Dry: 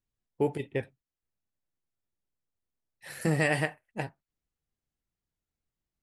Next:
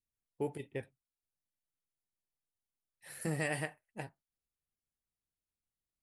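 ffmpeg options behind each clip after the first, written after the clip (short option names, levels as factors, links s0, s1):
-af "equalizer=f=10000:w=1.9:g=9,volume=0.355"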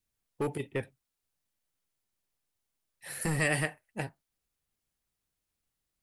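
-filter_complex "[0:a]acrossover=split=730|940[s0][s1][s2];[s0]volume=63.1,asoftclip=hard,volume=0.0158[s3];[s1]acompressor=threshold=0.001:ratio=6[s4];[s3][s4][s2]amix=inputs=3:normalize=0,volume=2.66"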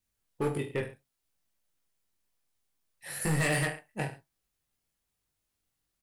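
-af "aecho=1:1:20|43|69.45|99.87|134.8:0.631|0.398|0.251|0.158|0.1,asoftclip=type=hard:threshold=0.0708"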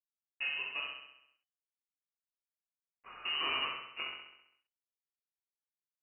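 -af "acrusher=bits=6:mix=0:aa=0.000001,aecho=1:1:66|132|198|264|330|396|462|528:0.562|0.321|0.183|0.104|0.0594|0.0338|0.0193|0.011,lowpass=f=2600:t=q:w=0.5098,lowpass=f=2600:t=q:w=0.6013,lowpass=f=2600:t=q:w=0.9,lowpass=f=2600:t=q:w=2.563,afreqshift=-3000,volume=0.447"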